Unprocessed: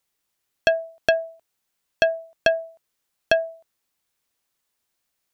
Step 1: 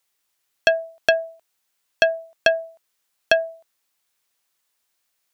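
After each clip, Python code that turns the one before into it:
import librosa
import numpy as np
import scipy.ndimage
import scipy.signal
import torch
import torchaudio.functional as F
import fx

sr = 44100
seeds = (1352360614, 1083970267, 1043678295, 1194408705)

y = fx.low_shelf(x, sr, hz=440.0, db=-9.5)
y = F.gain(torch.from_numpy(y), 4.0).numpy()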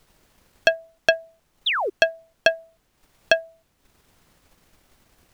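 y = fx.dmg_noise_colour(x, sr, seeds[0], colour='pink', level_db=-55.0)
y = fx.spec_paint(y, sr, seeds[1], shape='fall', start_s=1.66, length_s=0.24, low_hz=340.0, high_hz=4000.0, level_db=-19.0)
y = fx.transient(y, sr, attack_db=5, sustain_db=-8)
y = F.gain(torch.from_numpy(y), -5.0).numpy()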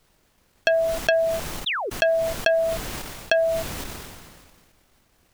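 y = fx.sustainer(x, sr, db_per_s=31.0)
y = F.gain(torch.from_numpy(y), -4.0).numpy()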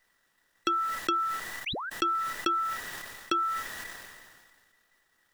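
y = fx.band_invert(x, sr, width_hz=2000)
y = F.gain(torch.from_numpy(y), -8.0).numpy()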